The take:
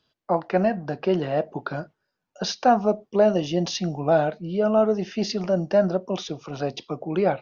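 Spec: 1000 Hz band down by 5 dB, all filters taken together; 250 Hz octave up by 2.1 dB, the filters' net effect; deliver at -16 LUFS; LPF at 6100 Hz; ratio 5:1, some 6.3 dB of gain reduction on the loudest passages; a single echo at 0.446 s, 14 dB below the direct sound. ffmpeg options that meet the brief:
-af "lowpass=6.1k,equalizer=f=250:t=o:g=3.5,equalizer=f=1k:t=o:g=-9,acompressor=threshold=-22dB:ratio=5,aecho=1:1:446:0.2,volume=12.5dB"

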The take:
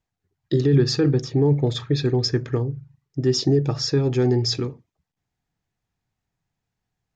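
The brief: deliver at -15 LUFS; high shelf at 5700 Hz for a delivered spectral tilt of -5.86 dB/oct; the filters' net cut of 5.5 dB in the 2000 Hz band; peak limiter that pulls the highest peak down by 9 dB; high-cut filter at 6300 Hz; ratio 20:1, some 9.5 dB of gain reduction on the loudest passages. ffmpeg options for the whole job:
-af "lowpass=6.3k,equalizer=f=2k:t=o:g=-6,highshelf=f=5.7k:g=-9,acompressor=threshold=-22dB:ratio=20,volume=16.5dB,alimiter=limit=-6dB:level=0:latency=1"

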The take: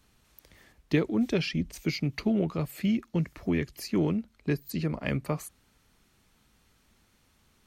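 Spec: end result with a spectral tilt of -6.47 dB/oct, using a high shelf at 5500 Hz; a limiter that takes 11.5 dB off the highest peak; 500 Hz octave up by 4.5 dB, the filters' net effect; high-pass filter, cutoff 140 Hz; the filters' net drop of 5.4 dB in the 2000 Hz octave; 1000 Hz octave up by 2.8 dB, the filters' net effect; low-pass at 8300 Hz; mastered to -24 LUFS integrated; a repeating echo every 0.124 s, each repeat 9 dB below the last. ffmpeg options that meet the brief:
-af "highpass=140,lowpass=8.3k,equalizer=f=500:t=o:g=5.5,equalizer=f=1k:t=o:g=3.5,equalizer=f=2k:t=o:g=-7,highshelf=f=5.5k:g=-4.5,alimiter=limit=-22.5dB:level=0:latency=1,aecho=1:1:124|248|372|496:0.355|0.124|0.0435|0.0152,volume=9dB"

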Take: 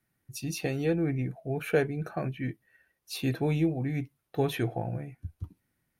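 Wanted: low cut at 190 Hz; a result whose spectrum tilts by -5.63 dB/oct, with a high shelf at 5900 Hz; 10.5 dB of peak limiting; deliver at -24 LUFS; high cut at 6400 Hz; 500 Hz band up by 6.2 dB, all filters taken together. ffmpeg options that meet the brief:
-af "highpass=190,lowpass=6.4k,equalizer=f=500:t=o:g=7.5,highshelf=f=5.9k:g=4,volume=7dB,alimiter=limit=-11.5dB:level=0:latency=1"

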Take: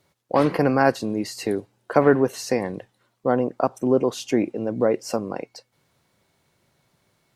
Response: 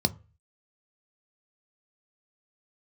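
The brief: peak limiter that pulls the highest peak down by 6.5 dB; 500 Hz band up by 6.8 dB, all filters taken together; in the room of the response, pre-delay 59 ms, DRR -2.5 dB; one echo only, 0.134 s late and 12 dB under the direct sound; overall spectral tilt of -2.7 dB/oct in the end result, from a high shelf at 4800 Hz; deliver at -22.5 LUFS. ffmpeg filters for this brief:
-filter_complex "[0:a]equalizer=f=500:t=o:g=8,highshelf=f=4.8k:g=7.5,alimiter=limit=-6dB:level=0:latency=1,aecho=1:1:134:0.251,asplit=2[a][b];[1:a]atrim=start_sample=2205,adelay=59[c];[b][c]afir=irnorm=-1:irlink=0,volume=-6dB[d];[a][d]amix=inputs=2:normalize=0,volume=-11dB"

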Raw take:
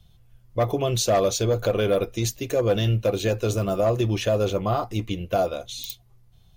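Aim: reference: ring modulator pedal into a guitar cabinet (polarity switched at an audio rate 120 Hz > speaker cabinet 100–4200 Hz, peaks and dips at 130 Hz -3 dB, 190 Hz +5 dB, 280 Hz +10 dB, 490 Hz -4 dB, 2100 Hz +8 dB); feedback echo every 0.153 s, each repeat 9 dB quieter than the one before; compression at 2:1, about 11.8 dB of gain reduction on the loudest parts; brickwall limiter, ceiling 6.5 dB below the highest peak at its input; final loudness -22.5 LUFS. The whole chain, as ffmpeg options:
-af "acompressor=threshold=-40dB:ratio=2,alimiter=level_in=4dB:limit=-24dB:level=0:latency=1,volume=-4dB,aecho=1:1:153|306|459|612:0.355|0.124|0.0435|0.0152,aeval=exprs='val(0)*sgn(sin(2*PI*120*n/s))':c=same,highpass=100,equalizer=f=130:t=q:w=4:g=-3,equalizer=f=190:t=q:w=4:g=5,equalizer=f=280:t=q:w=4:g=10,equalizer=f=490:t=q:w=4:g=-4,equalizer=f=2.1k:t=q:w=4:g=8,lowpass=f=4.2k:w=0.5412,lowpass=f=4.2k:w=1.3066,volume=13dB"

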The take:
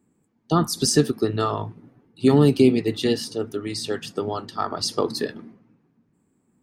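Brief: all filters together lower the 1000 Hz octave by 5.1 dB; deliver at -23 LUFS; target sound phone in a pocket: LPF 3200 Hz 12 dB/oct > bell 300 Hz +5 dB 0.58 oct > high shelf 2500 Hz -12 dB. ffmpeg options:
-af "lowpass=3.2k,equalizer=f=300:t=o:w=0.58:g=5,equalizer=f=1k:t=o:g=-4.5,highshelf=f=2.5k:g=-12,volume=-1.5dB"

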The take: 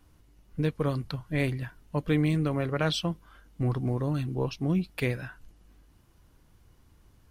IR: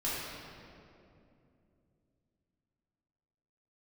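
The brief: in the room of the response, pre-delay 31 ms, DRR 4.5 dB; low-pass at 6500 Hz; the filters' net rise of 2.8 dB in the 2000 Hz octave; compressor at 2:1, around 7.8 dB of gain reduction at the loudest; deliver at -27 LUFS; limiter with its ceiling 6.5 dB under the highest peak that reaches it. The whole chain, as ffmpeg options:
-filter_complex "[0:a]lowpass=6.5k,equalizer=f=2k:t=o:g=3.5,acompressor=threshold=-36dB:ratio=2,alimiter=level_in=3dB:limit=-24dB:level=0:latency=1,volume=-3dB,asplit=2[a][b];[1:a]atrim=start_sample=2205,adelay=31[c];[b][c]afir=irnorm=-1:irlink=0,volume=-11dB[d];[a][d]amix=inputs=2:normalize=0,volume=9dB"

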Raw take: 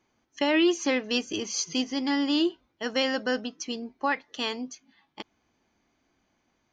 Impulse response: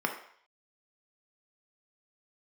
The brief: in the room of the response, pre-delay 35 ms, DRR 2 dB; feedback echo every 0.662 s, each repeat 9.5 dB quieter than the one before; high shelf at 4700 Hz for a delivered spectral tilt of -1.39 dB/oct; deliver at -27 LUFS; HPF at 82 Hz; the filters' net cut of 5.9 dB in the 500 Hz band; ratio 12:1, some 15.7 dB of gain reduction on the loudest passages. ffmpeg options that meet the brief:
-filter_complex "[0:a]highpass=82,equalizer=f=500:t=o:g=-8,highshelf=f=4.7k:g=6,acompressor=threshold=-38dB:ratio=12,aecho=1:1:662|1324|1986|2648:0.335|0.111|0.0365|0.012,asplit=2[a][b];[1:a]atrim=start_sample=2205,adelay=35[c];[b][c]afir=irnorm=-1:irlink=0,volume=-10.5dB[d];[a][d]amix=inputs=2:normalize=0,volume=13dB"

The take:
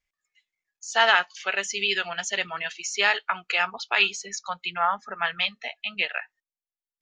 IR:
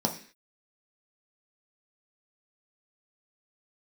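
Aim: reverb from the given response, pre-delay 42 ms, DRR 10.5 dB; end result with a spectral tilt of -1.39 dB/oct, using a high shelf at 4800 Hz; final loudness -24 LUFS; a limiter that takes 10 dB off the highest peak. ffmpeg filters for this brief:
-filter_complex "[0:a]highshelf=f=4.8k:g=-8,alimiter=limit=-16dB:level=0:latency=1,asplit=2[a][b];[1:a]atrim=start_sample=2205,adelay=42[c];[b][c]afir=irnorm=-1:irlink=0,volume=-19dB[d];[a][d]amix=inputs=2:normalize=0,volume=6dB"

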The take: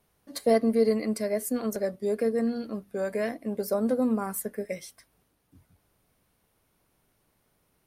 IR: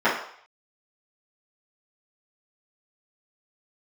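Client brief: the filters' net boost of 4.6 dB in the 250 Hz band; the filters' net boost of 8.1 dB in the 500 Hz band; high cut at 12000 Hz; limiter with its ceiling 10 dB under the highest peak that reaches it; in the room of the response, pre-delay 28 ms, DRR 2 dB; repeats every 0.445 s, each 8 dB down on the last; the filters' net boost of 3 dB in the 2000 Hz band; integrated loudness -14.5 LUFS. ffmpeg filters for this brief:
-filter_complex "[0:a]lowpass=12k,equalizer=f=250:t=o:g=3.5,equalizer=f=500:t=o:g=8.5,equalizer=f=2k:t=o:g=3,alimiter=limit=-15.5dB:level=0:latency=1,aecho=1:1:445|890|1335|1780|2225:0.398|0.159|0.0637|0.0255|0.0102,asplit=2[a][b];[1:a]atrim=start_sample=2205,adelay=28[c];[b][c]afir=irnorm=-1:irlink=0,volume=-21.5dB[d];[a][d]amix=inputs=2:normalize=0,volume=8dB"

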